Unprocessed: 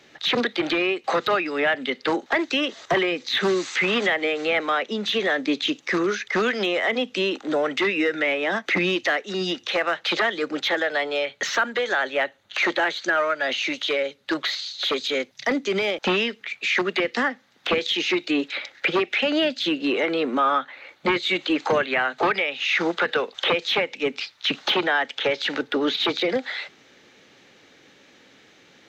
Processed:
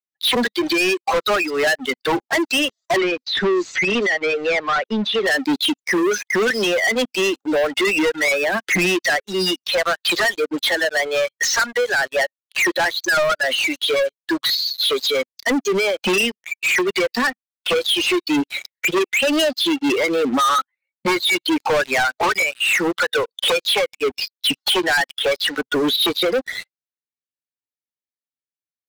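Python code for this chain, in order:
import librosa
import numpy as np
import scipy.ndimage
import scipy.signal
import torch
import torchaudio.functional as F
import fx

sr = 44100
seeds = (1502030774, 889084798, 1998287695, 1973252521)

y = fx.bin_expand(x, sr, power=2.0)
y = fx.low_shelf(y, sr, hz=260.0, db=-6.0)
y = fx.leveller(y, sr, passes=5)
y = fx.air_absorb(y, sr, metres=150.0, at=(2.96, 5.25), fade=0.02)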